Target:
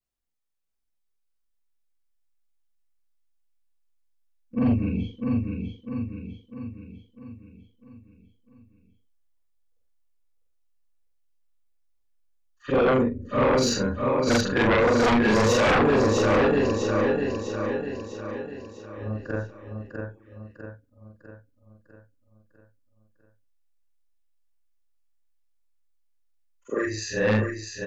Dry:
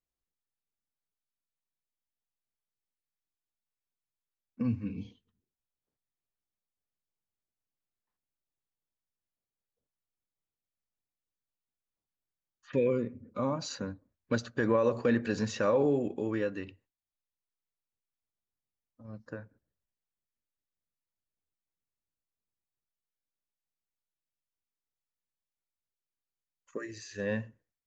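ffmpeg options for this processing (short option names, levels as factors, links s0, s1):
-filter_complex "[0:a]afftfilt=real='re':imag='-im':win_size=4096:overlap=0.75,afftdn=nr=12:nf=-64,asplit=2[s0][s1];[s1]aecho=0:1:650|1300|1950|2600|3250|3900:0.562|0.281|0.141|0.0703|0.0351|0.0176[s2];[s0][s2]amix=inputs=2:normalize=0,asubboost=boost=6.5:cutoff=52,aeval=exprs='0.119*sin(PI/2*3.98*val(0)/0.119)':c=same,volume=1.33"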